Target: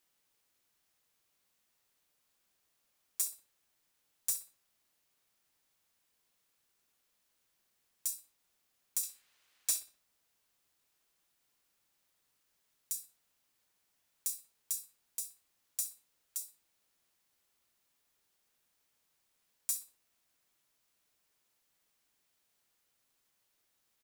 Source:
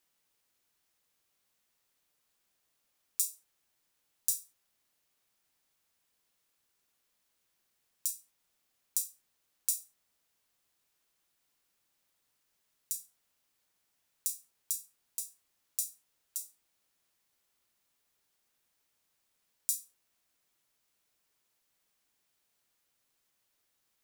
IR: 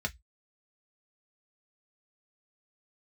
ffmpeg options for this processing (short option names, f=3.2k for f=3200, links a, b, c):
-filter_complex "[0:a]asettb=1/sr,asplit=3[a][b][c];[a]atrim=end=9.034[d];[b]atrim=start=9.03:end=9.8,asetpts=PTS-STARTPTS,afade=t=in:d=0.004:c=qsin,afade=t=out:st=0.766:d=0.004:c=qsin,equalizer=f=2.3k:t=o:w=2.8:g=12[e];[c]atrim=start=9.796[f];[d][e]acrossfade=d=0.004:c1=hsin:c2=qsin[g];[g][f]acrossfade=d=0.004:c1=qsin:c2=hsin,asoftclip=type=tanh:threshold=-21.5dB,asplit=2[h][i];[i]adelay=62,lowpass=f=4.3k:p=1,volume=-11.5dB,asplit=2[j][k];[k]adelay=62,lowpass=f=4.3k:p=1,volume=0.43,asplit=2[l][m];[m]adelay=62,lowpass=f=4.3k:p=1,volume=0.43,asplit=2[n][o];[o]adelay=62,lowpass=f=4.3k:p=1,volume=0.43[p];[j][l][n][p]amix=inputs=4:normalize=0[q];[h][q]amix=inputs=2:normalize=0"